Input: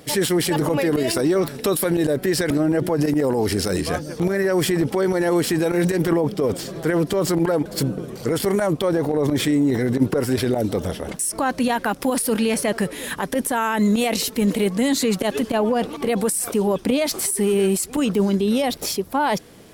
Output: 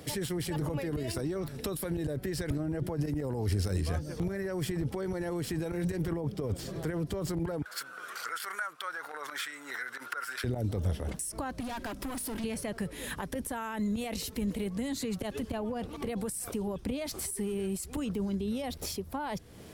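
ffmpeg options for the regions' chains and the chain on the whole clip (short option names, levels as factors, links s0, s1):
-filter_complex "[0:a]asettb=1/sr,asplit=3[s0][s1][s2];[s0]atrim=end=7.624[s3];[s1]atrim=start=7.62:end=10.44,asetpts=PTS-STARTPTS,afade=t=in:d=0.004:c=qsin,afade=t=out:st=2.816:d=0.004:c=qsin,acompressor=mode=upward:threshold=0.0708:ratio=2.5:attack=3.2:release=140:knee=2.83:detection=peak,highpass=f=1400:t=q:w=6[s4];[s2]atrim=start=10.436[s5];[s3][s4]acrossfade=d=0.004:c1=hsin:c2=qsin[s6];[s6][s5]acrossfade=d=0.004:c1=qsin:c2=hsin,asettb=1/sr,asplit=3[s7][s8][s9];[s7]atrim=end=11.604[s10];[s8]atrim=start=11.6:end=12.44,asetpts=PTS-STARTPTS,afade=t=in:d=0.004:c=qsin,afade=t=out:st=0.836:d=0.004:c=qsin,aecho=1:1:3.1:0.48,atrim=end_sample=37044,bandreject=f=49.97:t=h:w=4,bandreject=f=99.94:t=h:w=4,bandreject=f=149.91:t=h:w=4,bandreject=f=199.88:t=h:w=4,bandreject=f=249.85:t=h:w=4,volume=16.8,asoftclip=hard,volume=0.0596[s11];[s9]atrim=start=12.436[s12];[s10][s11]acrossfade=d=0.004:c1=hsin:c2=qsin[s13];[s13][s12]acrossfade=d=0.004:c1=qsin:c2=hsin,equalizer=f=70:w=0.91:g=8,acrossover=split=120[s14][s15];[s15]acompressor=threshold=0.02:ratio=3[s16];[s14][s16]amix=inputs=2:normalize=0,volume=0.668"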